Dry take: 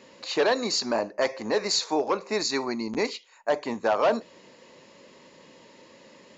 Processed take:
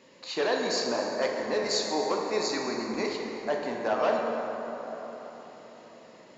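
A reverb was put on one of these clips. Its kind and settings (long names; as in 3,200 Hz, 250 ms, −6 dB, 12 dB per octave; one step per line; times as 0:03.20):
dense smooth reverb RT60 4.4 s, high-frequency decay 0.45×, DRR −0.5 dB
level −5.5 dB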